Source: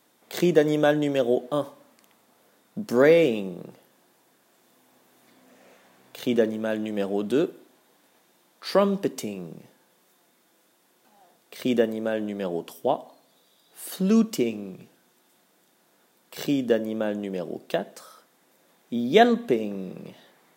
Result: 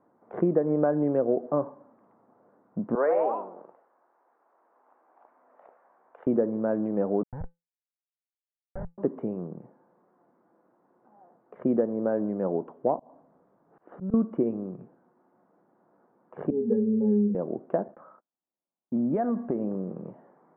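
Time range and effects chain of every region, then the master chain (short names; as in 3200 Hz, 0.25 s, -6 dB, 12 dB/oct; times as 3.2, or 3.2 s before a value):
2.95–6.27 echoes that change speed 0.105 s, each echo +4 st, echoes 3, each echo -6 dB + HPF 730 Hz
7.23–8.98 Schmitt trigger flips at -17.5 dBFS + fixed phaser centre 1700 Hz, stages 8 + resonator 170 Hz, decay 0.21 s, harmonics odd, mix 50%
12.99–14.14 auto swell 0.171 s + low shelf 130 Hz +12 dB + compressor 2:1, threshold -35 dBFS
16.5–17.35 notches 50/100/150/200/250/300/350/400/450/500 Hz + octave resonator G#, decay 0.31 s + small resonant body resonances 230/420 Hz, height 17 dB, ringing for 35 ms
17.88–19.67 gate -52 dBFS, range -34 dB + bell 450 Hz -7.5 dB 0.36 oct + compressor 10:1, threshold -23 dBFS
whole clip: inverse Chebyshev low-pass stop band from 4000 Hz, stop band 60 dB; compressor 6:1, threshold -21 dBFS; gain +1.5 dB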